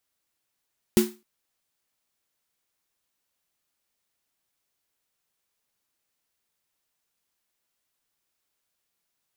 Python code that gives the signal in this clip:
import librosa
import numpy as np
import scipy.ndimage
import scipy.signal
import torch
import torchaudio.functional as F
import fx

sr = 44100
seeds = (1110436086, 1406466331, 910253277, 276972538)

y = fx.drum_snare(sr, seeds[0], length_s=0.26, hz=220.0, second_hz=360.0, noise_db=-9, noise_from_hz=710.0, decay_s=0.27, noise_decay_s=0.29)